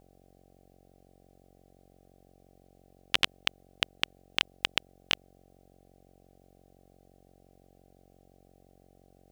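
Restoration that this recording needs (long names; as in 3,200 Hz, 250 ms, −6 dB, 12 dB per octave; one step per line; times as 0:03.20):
hum removal 45.8 Hz, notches 17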